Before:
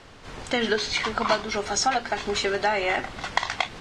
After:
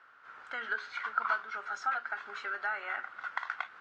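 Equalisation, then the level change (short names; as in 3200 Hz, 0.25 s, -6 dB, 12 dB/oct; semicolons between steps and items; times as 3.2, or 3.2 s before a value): band-pass 1400 Hz, Q 6.9; +1.5 dB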